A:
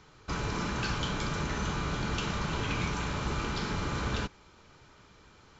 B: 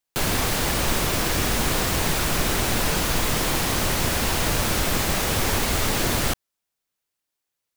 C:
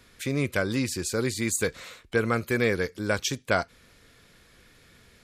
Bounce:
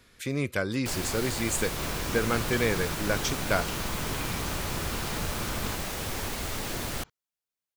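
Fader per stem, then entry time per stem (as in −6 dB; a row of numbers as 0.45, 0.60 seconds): −4.5, −10.5, −2.5 decibels; 1.50, 0.70, 0.00 seconds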